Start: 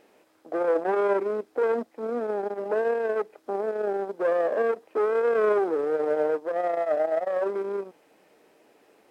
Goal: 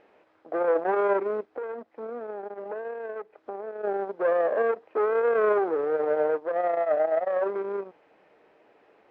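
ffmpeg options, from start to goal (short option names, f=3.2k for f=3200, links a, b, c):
-filter_complex "[0:a]lowpass=2.4k,equalizer=f=250:w=1:g=-6,asplit=3[a][b][c];[a]afade=t=out:st=1.45:d=0.02[d];[b]acompressor=threshold=-37dB:ratio=3,afade=t=in:st=1.45:d=0.02,afade=t=out:st=3.83:d=0.02[e];[c]afade=t=in:st=3.83:d=0.02[f];[d][e][f]amix=inputs=3:normalize=0,volume=2dB"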